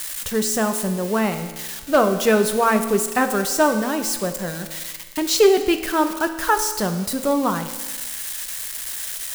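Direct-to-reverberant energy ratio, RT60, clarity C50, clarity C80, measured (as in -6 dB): 7.0 dB, 1.3 s, 9.5 dB, 11.0 dB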